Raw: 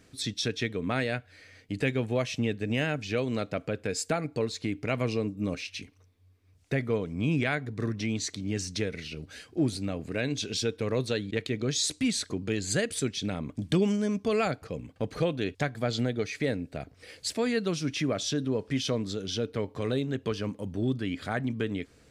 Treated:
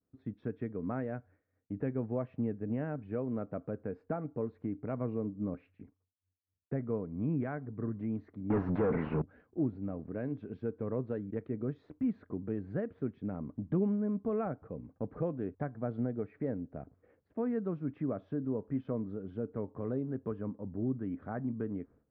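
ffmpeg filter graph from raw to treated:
-filter_complex "[0:a]asettb=1/sr,asplit=3[s0][s1][s2];[s0]atrim=end=8.504[s3];[s1]atrim=start=8.5:end=9.22,asetpts=PTS-STARTPTS,afade=t=in:d=0.004:c=qsin,afade=t=out:st=0.716:d=0.004:c=qsin,bass=f=250:g=6,treble=f=4000:g=-6,asplit=2[s4][s5];[s5]highpass=f=720:p=1,volume=70.8,asoftclip=type=tanh:threshold=0.178[s6];[s4][s6]amix=inputs=2:normalize=0,lowpass=f=4500:p=1,volume=0.501[s7];[s2]atrim=start=9.216[s8];[s3][s7]acrossfade=d=0.004:c1=hsin:c2=qsin[s9];[s9][s8]acrossfade=d=0.004:c1=qsin:c2=hsin,lowpass=f=1300:w=0.5412,lowpass=f=1300:w=1.3066,agate=range=0.0224:threshold=0.00398:ratio=3:detection=peak,equalizer=f=230:w=1.5:g=4,volume=0.422"

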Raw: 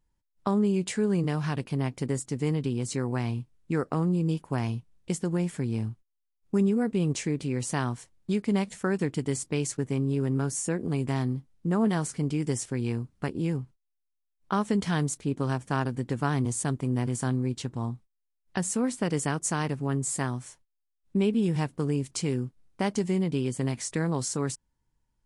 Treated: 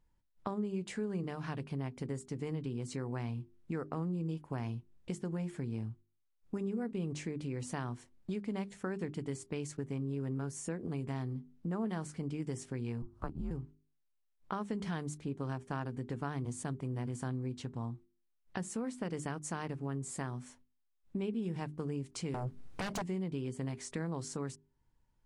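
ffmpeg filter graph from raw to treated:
-filter_complex "[0:a]asettb=1/sr,asplit=3[s0][s1][s2];[s0]atrim=end=13.024[s3];[s1]atrim=start=13.02:end=13.51,asetpts=PTS-STARTPTS,afade=t=in:d=0.004:c=qsin,afade=t=out:st=0.486:d=0.004:c=qsin,highshelf=f=1700:t=q:w=3:g=-8,acompressor=mode=upward:threshold=0.0126:ratio=2.5:attack=3.2:release=140:knee=2.83:detection=peak,afreqshift=-120[s4];[s2]atrim=start=13.506[s5];[s3][s4]acrossfade=d=0.004:c1=hsin:c2=qsin[s6];[s6][s5]acrossfade=d=0.004:c1=qsin:c2=hsin,asettb=1/sr,asplit=3[s7][s8][s9];[s7]atrim=end=22.344[s10];[s8]atrim=start=22.34:end=23.02,asetpts=PTS-STARTPTS,afade=t=in:d=0.004:c=qsin,afade=t=out:st=0.676:d=0.004:c=qsin,acompressor=threshold=0.0112:ratio=2:attack=3.2:release=140:knee=1:detection=peak,aeval=exprs='0.0668*sin(PI/2*5.01*val(0)/0.0668)':c=same[s11];[s9]atrim=start=23.016[s12];[s10][s11]acrossfade=d=0.004:c1=hsin:c2=qsin[s13];[s13][s12]acrossfade=d=0.004:c1=qsin:c2=hsin,highshelf=f=4500:g=-9,bandreject=f=50:t=h:w=6,bandreject=f=100:t=h:w=6,bandreject=f=150:t=h:w=6,bandreject=f=200:t=h:w=6,bandreject=f=250:t=h:w=6,bandreject=f=300:t=h:w=6,bandreject=f=350:t=h:w=6,bandreject=f=400:t=h:w=6,acompressor=threshold=0.00501:ratio=2,volume=1.26"

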